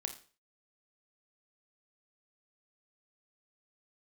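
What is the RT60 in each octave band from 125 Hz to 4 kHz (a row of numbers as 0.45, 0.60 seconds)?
0.40, 0.40, 0.40, 0.40, 0.40, 0.40 seconds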